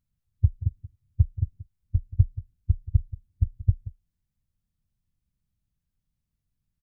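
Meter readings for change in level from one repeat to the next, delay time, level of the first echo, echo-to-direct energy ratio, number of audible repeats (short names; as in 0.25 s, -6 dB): no steady repeat, 0.18 s, -16.0 dB, -16.0 dB, 1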